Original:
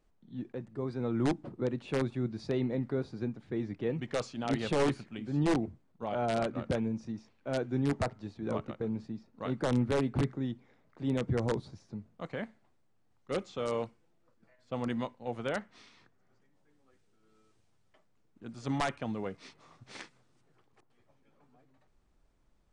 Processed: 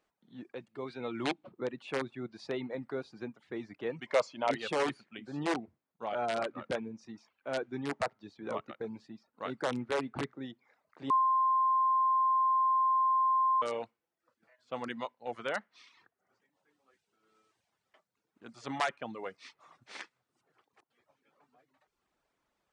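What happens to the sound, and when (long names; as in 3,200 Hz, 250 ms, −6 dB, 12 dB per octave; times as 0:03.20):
0:00.55–0:01.52: gain on a spectral selection 2,100–4,500 Hz +7 dB
0:04.06–0:04.51: hollow resonant body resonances 600/960/2,100 Hz, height 11 dB, ringing for 20 ms
0:11.10–0:13.62: beep over 1,050 Hz −24 dBFS
whole clip: reverb reduction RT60 0.62 s; high-pass filter 1,000 Hz 6 dB per octave; high-shelf EQ 3,900 Hz −8.5 dB; level +5.5 dB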